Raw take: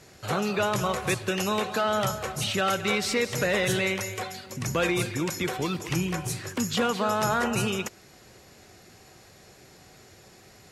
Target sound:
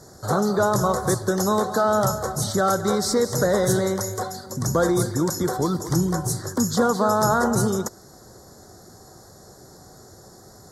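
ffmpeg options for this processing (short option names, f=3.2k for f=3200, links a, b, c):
-af "asuperstop=centerf=2600:order=4:qfactor=0.77,volume=6.5dB"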